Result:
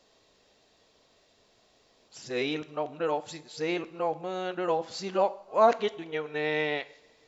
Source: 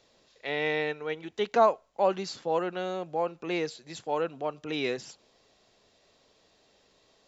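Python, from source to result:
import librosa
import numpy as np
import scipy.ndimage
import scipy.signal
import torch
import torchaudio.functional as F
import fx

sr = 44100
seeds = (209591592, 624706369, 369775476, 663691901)

y = np.flip(x).copy()
y = fx.rev_double_slope(y, sr, seeds[0], early_s=0.54, late_s=2.2, knee_db=-18, drr_db=13.0)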